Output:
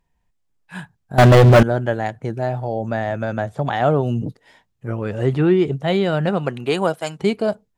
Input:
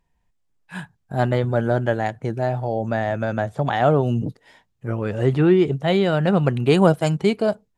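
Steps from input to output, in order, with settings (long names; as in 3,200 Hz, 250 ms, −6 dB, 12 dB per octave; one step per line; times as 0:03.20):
0:01.18–0:01.63: leveller curve on the samples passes 5
0:06.28–0:07.18: high-pass filter 230 Hz → 900 Hz 6 dB per octave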